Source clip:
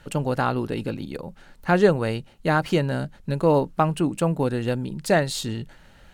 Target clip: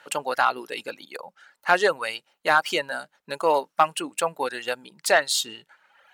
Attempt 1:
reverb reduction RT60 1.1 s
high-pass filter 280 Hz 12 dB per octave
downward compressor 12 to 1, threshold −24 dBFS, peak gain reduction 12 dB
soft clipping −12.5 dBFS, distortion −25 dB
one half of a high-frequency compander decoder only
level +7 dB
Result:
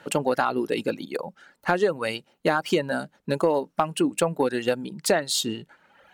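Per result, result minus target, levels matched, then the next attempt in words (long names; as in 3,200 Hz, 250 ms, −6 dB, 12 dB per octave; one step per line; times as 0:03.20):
downward compressor: peak gain reduction +12 dB; 250 Hz band +12.0 dB
reverb reduction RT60 1.1 s
high-pass filter 280 Hz 12 dB per octave
soft clipping −12.5 dBFS, distortion −16 dB
one half of a high-frequency compander decoder only
level +7 dB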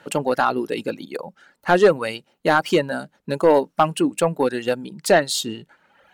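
250 Hz band +10.5 dB
reverb reduction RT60 1.1 s
high-pass filter 820 Hz 12 dB per octave
soft clipping −12.5 dBFS, distortion −21 dB
one half of a high-frequency compander decoder only
level +7 dB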